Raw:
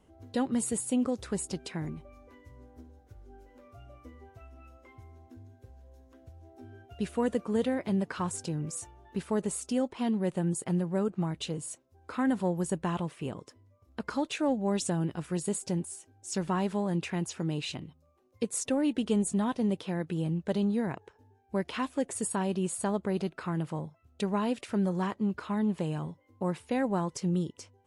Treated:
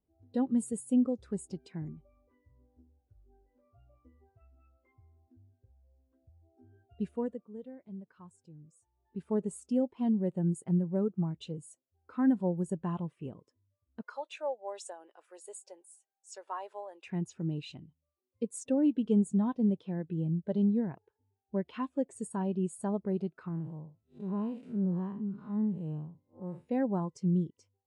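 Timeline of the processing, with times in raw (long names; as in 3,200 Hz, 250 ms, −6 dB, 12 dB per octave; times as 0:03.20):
0:07.04–0:09.31: duck −11 dB, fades 0.44 s
0:14.02–0:17.07: high-pass filter 500 Hz 24 dB per octave
0:18.77–0:22.69: low-pass filter 10,000 Hz
0:23.48–0:26.69: spectrum smeared in time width 163 ms
whole clip: every bin expanded away from the loudest bin 1.5 to 1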